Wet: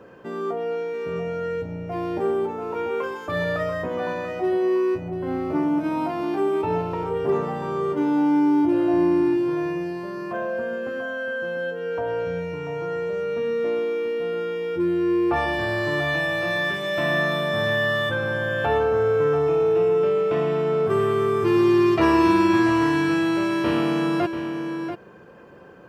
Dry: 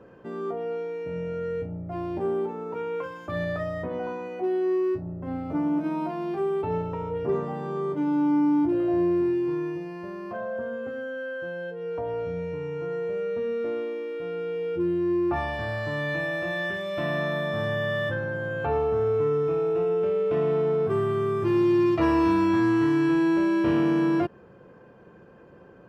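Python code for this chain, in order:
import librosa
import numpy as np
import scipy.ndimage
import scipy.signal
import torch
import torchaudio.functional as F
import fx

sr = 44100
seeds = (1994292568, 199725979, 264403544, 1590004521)

p1 = fx.tilt_eq(x, sr, slope=1.5)
p2 = p1 + fx.echo_single(p1, sr, ms=687, db=-9.5, dry=0)
y = F.gain(torch.from_numpy(p2), 5.5).numpy()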